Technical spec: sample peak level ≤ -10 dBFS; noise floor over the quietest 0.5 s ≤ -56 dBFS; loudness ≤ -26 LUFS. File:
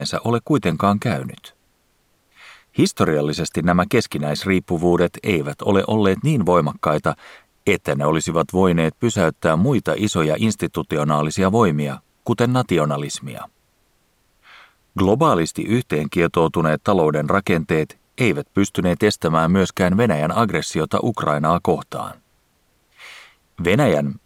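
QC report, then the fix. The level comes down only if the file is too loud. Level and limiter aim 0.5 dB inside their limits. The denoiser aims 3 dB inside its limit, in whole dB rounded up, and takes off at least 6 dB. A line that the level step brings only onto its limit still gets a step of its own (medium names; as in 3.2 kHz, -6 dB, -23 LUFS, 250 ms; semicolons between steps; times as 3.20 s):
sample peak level -3.5 dBFS: fail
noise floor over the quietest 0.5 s -63 dBFS: pass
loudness -19.0 LUFS: fail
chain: trim -7.5 dB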